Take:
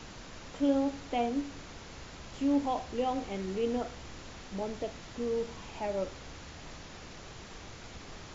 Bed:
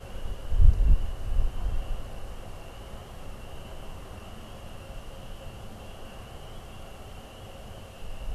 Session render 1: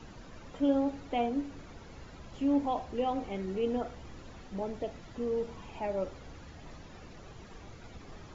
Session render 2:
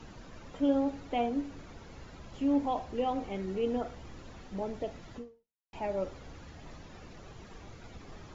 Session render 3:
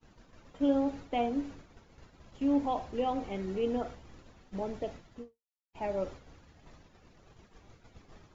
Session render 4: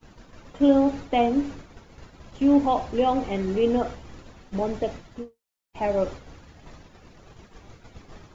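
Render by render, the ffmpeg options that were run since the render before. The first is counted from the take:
-af "afftdn=nr=10:nf=-48"
-filter_complex "[0:a]asplit=2[s0][s1];[s0]atrim=end=5.73,asetpts=PTS-STARTPTS,afade=t=out:st=5.17:d=0.56:c=exp[s2];[s1]atrim=start=5.73,asetpts=PTS-STARTPTS,afade=t=in:d=0.004:c=hsin[s3];[s2][s3]concat=n=2:v=0:a=1"
-af "agate=range=0.0224:threshold=0.01:ratio=3:detection=peak"
-af "volume=2.99"

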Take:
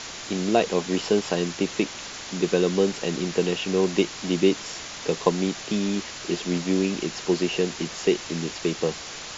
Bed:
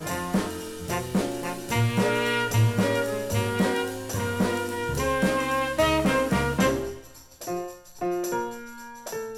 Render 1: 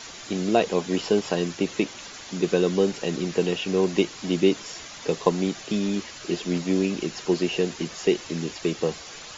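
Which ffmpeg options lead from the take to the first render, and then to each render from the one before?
-af "afftdn=nr=8:nf=-38"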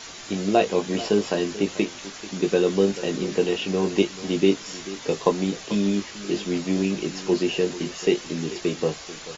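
-filter_complex "[0:a]asplit=2[s0][s1];[s1]adelay=20,volume=0.473[s2];[s0][s2]amix=inputs=2:normalize=0,aecho=1:1:438:0.158"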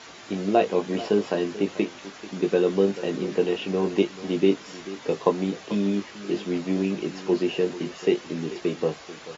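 -af "highpass=f=150:p=1,aemphasis=mode=reproduction:type=75kf"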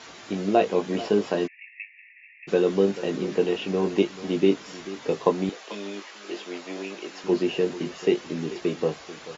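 -filter_complex "[0:a]asplit=3[s0][s1][s2];[s0]afade=t=out:st=1.46:d=0.02[s3];[s1]asuperpass=centerf=2200:order=20:qfactor=2.3,afade=t=in:st=1.46:d=0.02,afade=t=out:st=2.47:d=0.02[s4];[s2]afade=t=in:st=2.47:d=0.02[s5];[s3][s4][s5]amix=inputs=3:normalize=0,asettb=1/sr,asplit=3[s6][s7][s8];[s6]atrim=end=5.494[s9];[s7]atrim=start=5.49:end=7.24,asetpts=PTS-STARTPTS,afade=t=in:d=0.004:c=qsin,afade=t=out:st=1.746:d=0.004:c=qsin,highpass=540[s10];[s8]atrim=start=7.236[s11];[s9][s10]acrossfade=d=0.004:c1=hsin:c2=qsin[s12];[s12][s11]acrossfade=d=0.004:c1=qsin:c2=hsin"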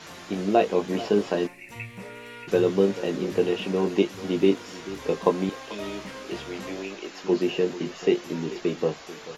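-filter_complex "[1:a]volume=0.133[s0];[0:a][s0]amix=inputs=2:normalize=0"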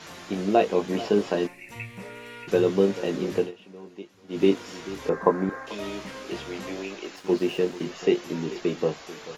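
-filter_complex "[0:a]asettb=1/sr,asplit=3[s0][s1][s2];[s0]atrim=end=5.094[s3];[s1]atrim=start=5.09:end=5.67,asetpts=PTS-STARTPTS,afade=t=in:d=0.004:c=qsin,afade=t=out:st=0.576:d=0.004:c=qsin,highshelf=f=2200:t=q:w=3:g=-10.5[s4];[s2]atrim=start=5.666[s5];[s3][s4]acrossfade=d=0.004:c1=hsin:c2=qsin[s6];[s6][s5]acrossfade=d=0.004:c1=qsin:c2=hsin,asettb=1/sr,asplit=3[s7][s8][s9];[s7]atrim=end=7.164[s10];[s8]atrim=start=7.16:end=7.86,asetpts=PTS-STARTPTS,afade=t=in:d=0.004:c=qsin,afade=t=out:st=0.696:d=0.004:c=qsin,aeval=exprs='sgn(val(0))*max(abs(val(0))-0.00562,0)':c=same[s11];[s9]atrim=start=7.856[s12];[s10][s11]acrossfade=d=0.004:c1=hsin:c2=qsin[s13];[s13][s12]acrossfade=d=0.004:c1=qsin:c2=hsin,asplit=3[s14][s15][s16];[s14]atrim=end=3.52,asetpts=PTS-STARTPTS,afade=t=out:st=3.37:d=0.15:silence=0.112202[s17];[s15]atrim=start=3.52:end=4.28,asetpts=PTS-STARTPTS,volume=0.112[s18];[s16]atrim=start=4.28,asetpts=PTS-STARTPTS,afade=t=in:d=0.15:silence=0.112202[s19];[s17][s18][s19]concat=n=3:v=0:a=1"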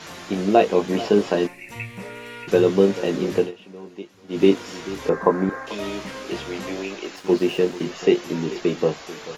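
-af "volume=1.68,alimiter=limit=0.794:level=0:latency=1"

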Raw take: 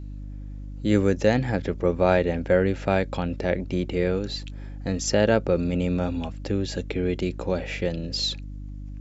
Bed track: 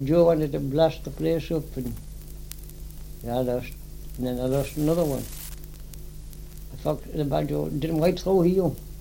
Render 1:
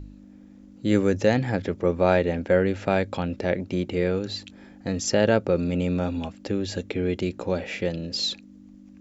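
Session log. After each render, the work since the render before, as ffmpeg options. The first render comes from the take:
-af "bandreject=f=50:t=h:w=4,bandreject=f=100:t=h:w=4,bandreject=f=150:t=h:w=4"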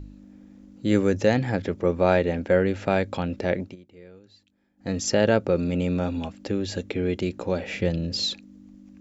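-filter_complex "[0:a]asettb=1/sr,asplit=3[s0][s1][s2];[s0]atrim=end=7.674[s3];[s1]atrim=start=7.67:end=8.26,asetpts=PTS-STARTPTS,afade=t=in:d=0.004:c=qsin,afade=t=out:st=0.586:d=0.004:c=qsin,equalizer=f=95:w=0.71:g=8.5[s4];[s2]atrim=start=8.256[s5];[s3][s4]acrossfade=d=0.004:c1=hsin:c2=qsin[s6];[s6][s5]acrossfade=d=0.004:c1=qsin:c2=hsin,asplit=3[s7][s8][s9];[s7]atrim=end=3.76,asetpts=PTS-STARTPTS,afade=t=out:st=3.63:d=0.13:silence=0.0707946[s10];[s8]atrim=start=3.76:end=4.77,asetpts=PTS-STARTPTS,volume=0.0708[s11];[s9]atrim=start=4.77,asetpts=PTS-STARTPTS,afade=t=in:d=0.13:silence=0.0707946[s12];[s10][s11][s12]concat=n=3:v=0:a=1"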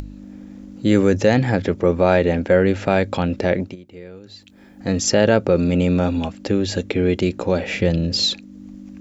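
-filter_complex "[0:a]asplit=2[s0][s1];[s1]alimiter=limit=0.188:level=0:latency=1:release=20,volume=1.33[s2];[s0][s2]amix=inputs=2:normalize=0,acompressor=mode=upward:threshold=0.0282:ratio=2.5"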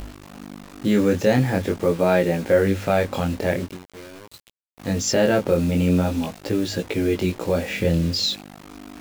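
-af "acrusher=bits=5:mix=0:aa=0.000001,flanger=delay=17:depth=7.3:speed=0.45"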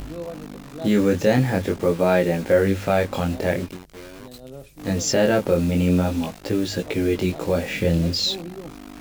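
-filter_complex "[1:a]volume=0.178[s0];[0:a][s0]amix=inputs=2:normalize=0"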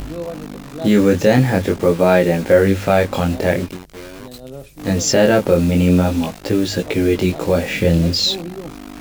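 -af "volume=1.88,alimiter=limit=0.891:level=0:latency=1"

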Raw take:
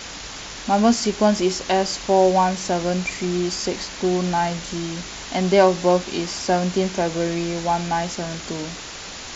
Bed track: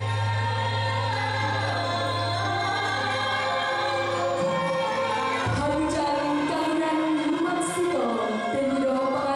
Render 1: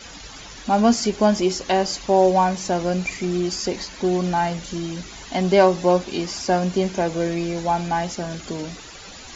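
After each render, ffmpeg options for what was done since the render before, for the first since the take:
-af "afftdn=nr=11:nf=-35"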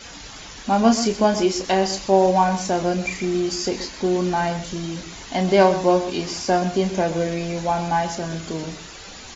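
-filter_complex "[0:a]asplit=2[s0][s1];[s1]adelay=31,volume=0.398[s2];[s0][s2]amix=inputs=2:normalize=0,asplit=2[s3][s4];[s4]adelay=128.3,volume=0.251,highshelf=f=4000:g=-2.89[s5];[s3][s5]amix=inputs=2:normalize=0"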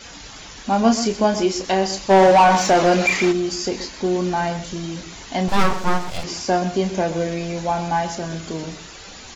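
-filter_complex "[0:a]asplit=3[s0][s1][s2];[s0]afade=t=out:st=2.09:d=0.02[s3];[s1]asplit=2[s4][s5];[s5]highpass=f=720:p=1,volume=11.2,asoftclip=type=tanh:threshold=0.631[s6];[s4][s6]amix=inputs=2:normalize=0,lowpass=f=2600:p=1,volume=0.501,afade=t=in:st=2.09:d=0.02,afade=t=out:st=3.31:d=0.02[s7];[s2]afade=t=in:st=3.31:d=0.02[s8];[s3][s7][s8]amix=inputs=3:normalize=0,asettb=1/sr,asplit=3[s9][s10][s11];[s9]atrim=end=5.484[s12];[s10]atrim=start=5.48:end=6.24,asetpts=PTS-STARTPTS,afade=t=in:d=0.004:c=qsin,afade=t=out:st=0.756:d=0.004:c=qsin,aeval=exprs='abs(val(0))':c=same[s13];[s11]atrim=start=6.236[s14];[s12][s13]acrossfade=d=0.004:c1=hsin:c2=qsin[s15];[s15][s14]acrossfade=d=0.004:c1=qsin:c2=hsin"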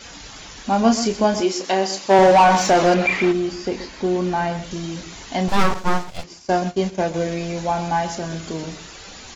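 -filter_complex "[0:a]asettb=1/sr,asplit=3[s0][s1][s2];[s0]atrim=end=1.404[s3];[s1]atrim=start=1.4:end=2.19,asetpts=PTS-STARTPTS,afade=t=in:d=0.004:c=qsin,afade=t=out:st=0.786:d=0.004:c=qsin,highpass=220[s4];[s2]atrim=start=2.186[s5];[s3][s4]acrossfade=d=0.004:c1=hsin:c2=qsin[s6];[s6][s5]acrossfade=d=0.004:c1=qsin:c2=hsin,asettb=1/sr,asplit=3[s7][s8][s9];[s7]atrim=end=2.944[s10];[s8]atrim=start=2.94:end=4.71,asetpts=PTS-STARTPTS,afade=t=in:d=0.004:c=qsin,afade=t=out:st=1.766:d=0.004:c=qsin,acrossover=split=3600[s11][s12];[s12]acompressor=threshold=0.00631:ratio=4:attack=1:release=60[s13];[s11][s13]amix=inputs=2:normalize=0[s14];[s9]atrim=start=4.706[s15];[s10][s14]acrossfade=d=0.004:c1=hsin:c2=qsin[s16];[s16][s15]acrossfade=d=0.004:c1=qsin:c2=hsin,asettb=1/sr,asplit=3[s17][s18][s19];[s17]atrim=end=5.744[s20];[s18]atrim=start=5.74:end=7.14,asetpts=PTS-STARTPTS,afade=t=in:d=0.004:c=qsin,afade=t=out:st=1.396:d=0.004:c=qsin,agate=range=0.0224:threshold=0.0891:ratio=3:release=100:detection=peak[s21];[s19]atrim=start=7.136[s22];[s20][s21]acrossfade=d=0.004:c1=hsin:c2=qsin[s23];[s23][s22]acrossfade=d=0.004:c1=qsin:c2=hsin"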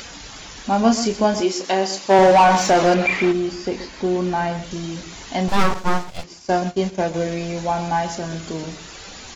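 -af "acompressor=mode=upward:threshold=0.0224:ratio=2.5"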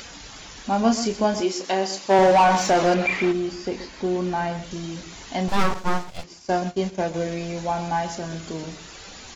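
-af "volume=0.668"

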